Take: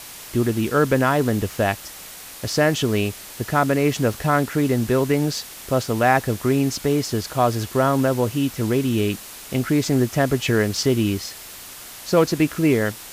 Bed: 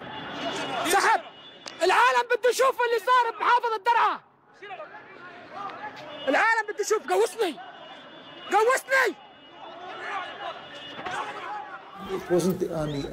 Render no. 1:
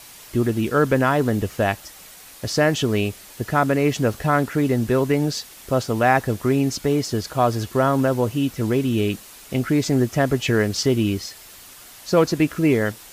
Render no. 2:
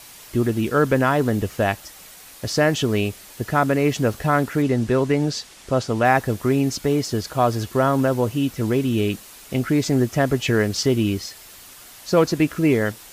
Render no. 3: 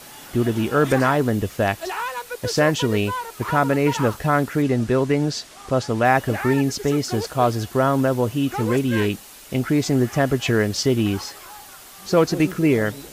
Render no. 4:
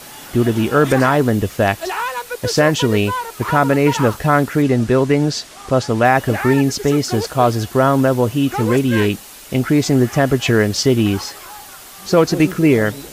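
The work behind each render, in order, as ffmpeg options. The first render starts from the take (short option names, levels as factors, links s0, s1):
-af "afftdn=nr=6:nf=-39"
-filter_complex "[0:a]asettb=1/sr,asplit=3[s0][s1][s2];[s0]atrim=end=4.624[s3];[s1]atrim=start=4.62:end=6.05,asetpts=PTS-STARTPTS,afade=t=in:d=0.004:c=qsin,afade=t=out:st=1.426:d=0.004:c=qsin,lowpass=8600[s4];[s2]atrim=start=6.046[s5];[s3][s4]acrossfade=d=0.004:c1=hsin:c2=qsin[s6];[s6][s5]acrossfade=d=0.004:c1=qsin:c2=hsin"
-filter_complex "[1:a]volume=0.398[s0];[0:a][s0]amix=inputs=2:normalize=0"
-af "volume=1.78,alimiter=limit=0.794:level=0:latency=1"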